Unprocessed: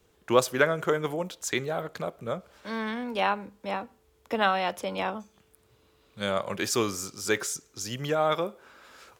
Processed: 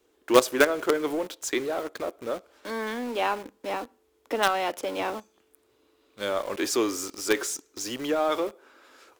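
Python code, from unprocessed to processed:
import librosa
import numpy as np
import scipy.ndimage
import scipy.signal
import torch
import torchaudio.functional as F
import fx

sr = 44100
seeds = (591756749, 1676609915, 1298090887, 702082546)

p1 = fx.low_shelf_res(x, sr, hz=220.0, db=-9.5, q=3.0)
p2 = fx.quant_companded(p1, sr, bits=2)
p3 = p1 + F.gain(torch.from_numpy(p2), -10.0).numpy()
y = F.gain(torch.from_numpy(p3), -3.0).numpy()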